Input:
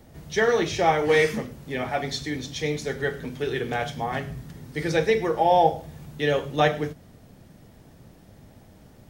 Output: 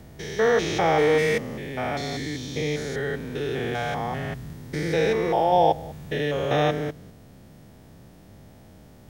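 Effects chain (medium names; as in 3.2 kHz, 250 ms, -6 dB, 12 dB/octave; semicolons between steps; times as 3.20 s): spectrogram pixelated in time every 200 ms; trim +3 dB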